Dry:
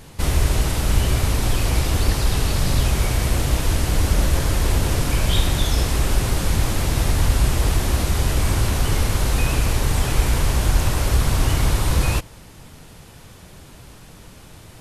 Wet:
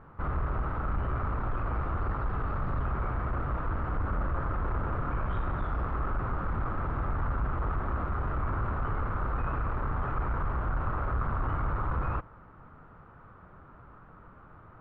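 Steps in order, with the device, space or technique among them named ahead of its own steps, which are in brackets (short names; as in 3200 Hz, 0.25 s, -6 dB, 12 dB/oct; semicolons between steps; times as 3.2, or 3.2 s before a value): overdriven synthesiser ladder filter (soft clip -13.5 dBFS, distortion -15 dB; ladder low-pass 1400 Hz, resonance 70%); gain +1.5 dB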